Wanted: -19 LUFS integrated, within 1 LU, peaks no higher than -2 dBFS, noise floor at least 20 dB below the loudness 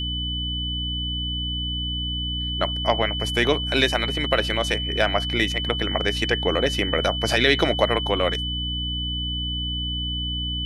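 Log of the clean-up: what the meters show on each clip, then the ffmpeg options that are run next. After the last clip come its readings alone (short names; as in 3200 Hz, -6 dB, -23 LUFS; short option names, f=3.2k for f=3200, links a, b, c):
hum 60 Hz; harmonics up to 300 Hz; hum level -27 dBFS; steady tone 3000 Hz; tone level -27 dBFS; loudness -23.0 LUFS; peak -4.0 dBFS; loudness target -19.0 LUFS
-> -af "bandreject=f=60:t=h:w=4,bandreject=f=120:t=h:w=4,bandreject=f=180:t=h:w=4,bandreject=f=240:t=h:w=4,bandreject=f=300:t=h:w=4"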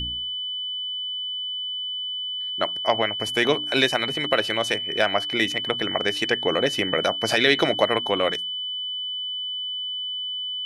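hum none; steady tone 3000 Hz; tone level -27 dBFS
-> -af "bandreject=f=3k:w=30"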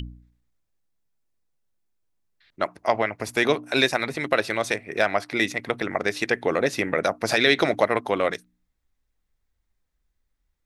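steady tone none; loudness -23.5 LUFS; peak -4.5 dBFS; loudness target -19.0 LUFS
-> -af "volume=4.5dB,alimiter=limit=-2dB:level=0:latency=1"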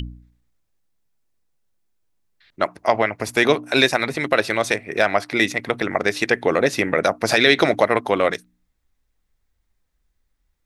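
loudness -19.5 LUFS; peak -2.0 dBFS; noise floor -72 dBFS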